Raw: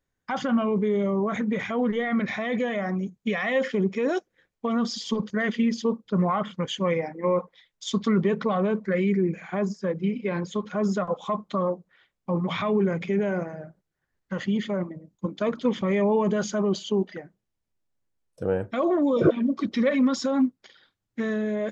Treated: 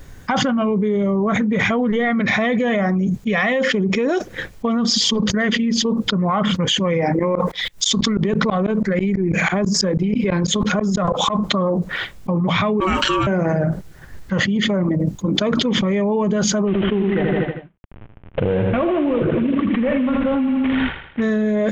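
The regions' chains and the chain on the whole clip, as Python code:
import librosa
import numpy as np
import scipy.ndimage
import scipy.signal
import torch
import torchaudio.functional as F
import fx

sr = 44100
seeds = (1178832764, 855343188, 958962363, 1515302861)

y = fx.chain(x, sr, fx.high_shelf(hz=4600.0, db=5.5),
    fx.over_compress(threshold_db=-32.0, ratio=-1.0),
    fx.tremolo_decay(direction='swelling', hz=6.1, depth_db=28), at=(7.19, 11.39))
y = fx.chain(y, sr, fx.highpass(hz=540.0, slope=12),
    fx.ring_mod(carrier_hz=750.0),
    fx.high_shelf(hz=4400.0, db=9.5), at=(12.8, 13.27))
y = fx.chain(y, sr, fx.cvsd(bps=16000),
    fx.echo_feedback(ms=80, feedback_pct=47, wet_db=-8), at=(16.67, 21.22))
y = fx.low_shelf(y, sr, hz=140.0, db=10.5)
y = fx.env_flatten(y, sr, amount_pct=100)
y = y * librosa.db_to_amplitude(-5.0)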